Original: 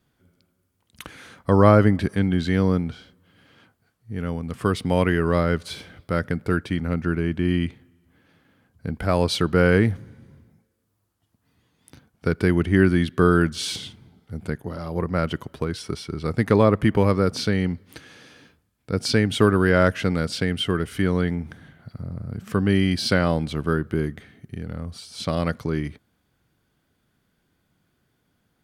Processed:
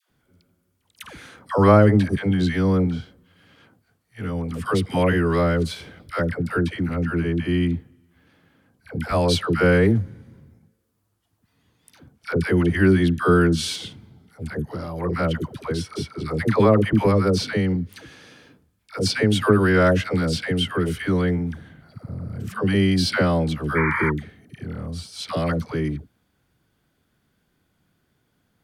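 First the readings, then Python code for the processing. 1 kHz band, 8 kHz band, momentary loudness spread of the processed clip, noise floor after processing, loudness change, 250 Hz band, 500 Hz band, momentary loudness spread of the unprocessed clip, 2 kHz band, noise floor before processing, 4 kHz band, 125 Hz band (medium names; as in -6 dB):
+1.5 dB, +1.0 dB, 16 LU, -70 dBFS, +1.0 dB, +1.0 dB, +1.0 dB, 16 LU, +1.5 dB, -71 dBFS, +1.0 dB, +1.0 dB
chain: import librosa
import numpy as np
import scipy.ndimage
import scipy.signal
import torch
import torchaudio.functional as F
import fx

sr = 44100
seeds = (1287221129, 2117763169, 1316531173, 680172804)

y = fx.spec_paint(x, sr, seeds[0], shape='noise', start_s=23.74, length_s=0.35, low_hz=850.0, high_hz=2400.0, level_db=-25.0)
y = fx.dispersion(y, sr, late='lows', ms=101.0, hz=650.0)
y = y * librosa.db_to_amplitude(1.0)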